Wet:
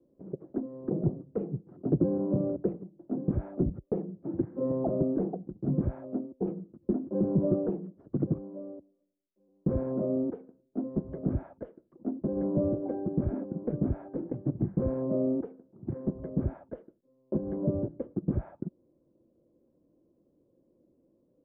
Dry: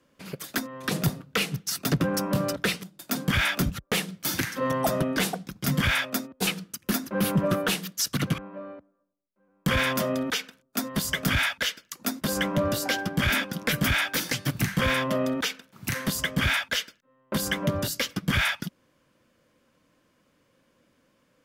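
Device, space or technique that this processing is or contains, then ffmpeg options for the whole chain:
under water: -af "lowpass=f=640:w=0.5412,lowpass=f=640:w=1.3066,equalizer=f=350:t=o:w=0.48:g=11,volume=-3.5dB"

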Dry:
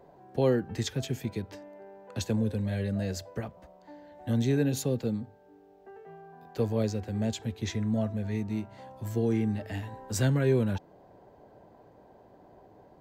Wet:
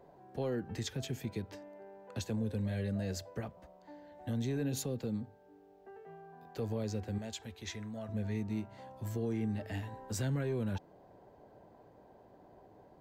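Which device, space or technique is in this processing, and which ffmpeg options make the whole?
soft clipper into limiter: -filter_complex "[0:a]asoftclip=type=tanh:threshold=-15dB,alimiter=limit=-24dB:level=0:latency=1:release=89,asettb=1/sr,asplit=3[a][b][c];[a]atrim=end=7.184[d];[b]atrim=start=7.18:end=8.09,asetpts=PTS-STARTPTS,afade=t=in:d=0.004:c=qsin,afade=t=out:st=0.906:d=0.004:c=qsin,equalizer=f=125:t=o:w=1:g=-11,equalizer=f=250:t=o:w=1:g=-6,equalizer=f=500:t=o:w=1:g=-4[e];[c]atrim=start=8.086[f];[d][e]acrossfade=d=0.004:c1=hsin:c2=qsin[g];[g][f]acrossfade=d=0.004:c1=qsin:c2=hsin,volume=-3.5dB"

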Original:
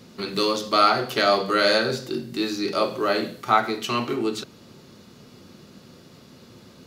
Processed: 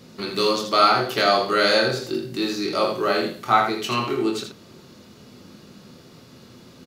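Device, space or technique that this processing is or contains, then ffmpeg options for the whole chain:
slapback doubling: -filter_complex "[0:a]asplit=3[a][b][c];[b]adelay=24,volume=-6dB[d];[c]adelay=81,volume=-7dB[e];[a][d][e]amix=inputs=3:normalize=0"

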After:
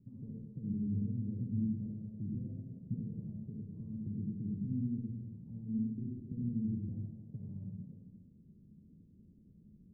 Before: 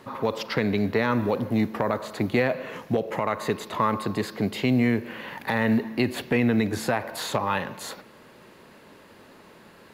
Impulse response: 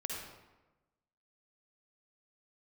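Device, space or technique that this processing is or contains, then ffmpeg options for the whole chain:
club heard from the street: -filter_complex "[0:a]alimiter=limit=-21dB:level=0:latency=1:release=275,lowpass=f=200:w=0.5412,lowpass=f=200:w=1.3066[a];[1:a]atrim=start_sample=2205[b];[a][b]afir=irnorm=-1:irlink=0,volume=-1.5dB"

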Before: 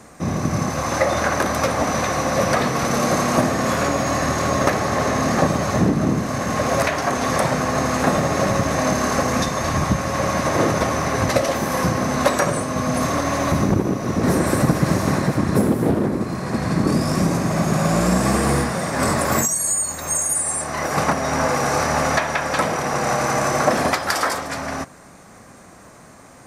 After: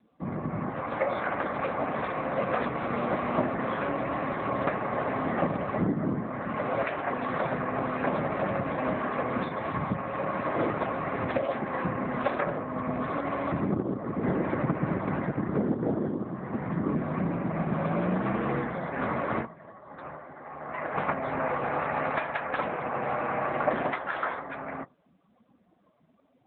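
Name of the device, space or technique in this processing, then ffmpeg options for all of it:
mobile call with aggressive noise cancelling: -af "highpass=f=150:p=1,lowpass=f=11k:w=0.5412,lowpass=f=11k:w=1.3066,afftdn=nr=20:nf=-35,volume=-7.5dB" -ar 8000 -c:a libopencore_amrnb -b:a 7950

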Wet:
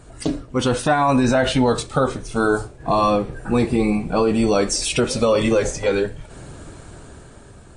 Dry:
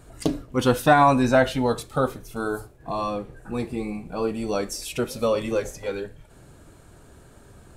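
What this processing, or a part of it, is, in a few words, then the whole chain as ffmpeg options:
low-bitrate web radio: -af "dynaudnorm=f=290:g=7:m=8dB,alimiter=limit=-13dB:level=0:latency=1:release=36,volume=4.5dB" -ar 22050 -c:a libmp3lame -b:a 40k

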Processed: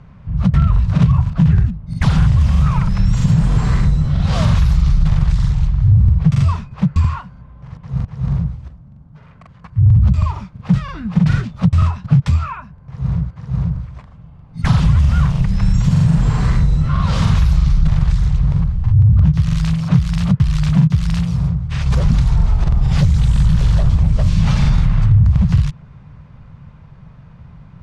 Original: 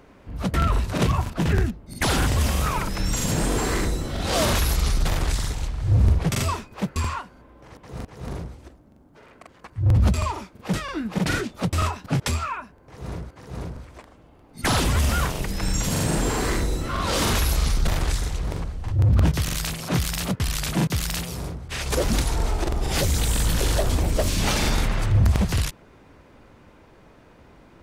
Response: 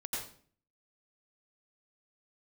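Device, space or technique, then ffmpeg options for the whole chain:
jukebox: -af "lowpass=5.2k,lowshelf=f=220:t=q:w=3:g=13,acompressor=threshold=-8dB:ratio=4,equalizer=f=1.1k:t=o:w=0.62:g=5,volume=-1dB"

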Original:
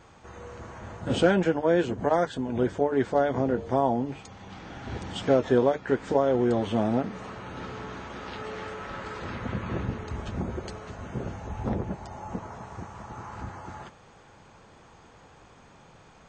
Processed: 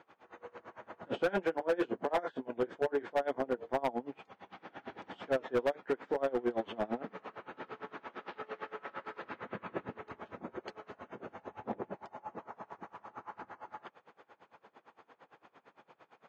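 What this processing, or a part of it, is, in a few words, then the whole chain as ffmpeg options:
helicopter radio: -filter_complex "[0:a]asettb=1/sr,asplit=3[a][b][c];[a]atrim=end=1.304[d];[b]atrim=start=1.3:end=3.14,asetpts=PTS-STARTPTS,afade=t=in:d=0.004:c=qsin,afade=t=out:st=1.836:d=0.004:c=qsin,asplit=2[e][f];[f]adelay=26,volume=-7.5dB[g];[e][g]amix=inputs=2:normalize=0,atrim=end_sample=81144[h];[c]atrim=start=3.136[i];[d][h]acrossfade=d=0.004:c1=hsin:c2=qsin[j];[j][i]acrossfade=d=0.004:c1=qsin:c2=hsin,highpass=330,lowpass=2.7k,aeval=exprs='val(0)*pow(10,-25*(0.5-0.5*cos(2*PI*8.8*n/s))/20)':c=same,asoftclip=type=hard:threshold=-24.5dB"

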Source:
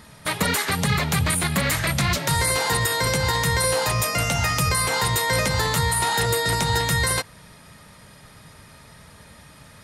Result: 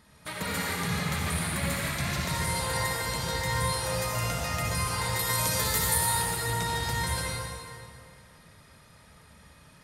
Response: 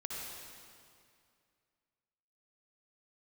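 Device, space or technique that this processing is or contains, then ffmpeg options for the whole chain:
stairwell: -filter_complex "[0:a]asettb=1/sr,asplit=3[a][b][c];[a]atrim=end=5.194[d];[b]atrim=start=5.19:end=5.98,asetpts=PTS-STARTPTS,afade=t=in:d=0.004:c=qsin,afade=t=out:st=0.786:d=0.004:c=qsin,aemphasis=mode=production:type=50fm[e];[c]atrim=start=5.976[f];[d][e]acrossfade=d=0.004:c1=hsin:c2=qsin[g];[g][f]acrossfade=d=0.004:c1=qsin:c2=hsin[h];[1:a]atrim=start_sample=2205[i];[h][i]afir=irnorm=-1:irlink=0,volume=-8.5dB"

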